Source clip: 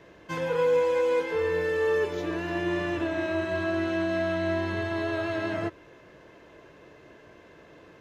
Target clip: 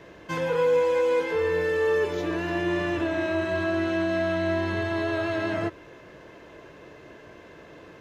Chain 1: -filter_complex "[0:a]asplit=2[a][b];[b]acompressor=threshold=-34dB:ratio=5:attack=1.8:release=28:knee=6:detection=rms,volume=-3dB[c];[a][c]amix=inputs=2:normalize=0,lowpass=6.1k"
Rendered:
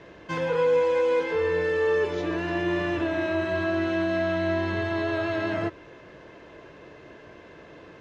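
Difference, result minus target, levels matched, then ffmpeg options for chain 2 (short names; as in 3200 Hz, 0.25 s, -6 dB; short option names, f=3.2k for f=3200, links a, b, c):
8000 Hz band -4.0 dB
-filter_complex "[0:a]asplit=2[a][b];[b]acompressor=threshold=-34dB:ratio=5:attack=1.8:release=28:knee=6:detection=rms,volume=-3dB[c];[a][c]amix=inputs=2:normalize=0"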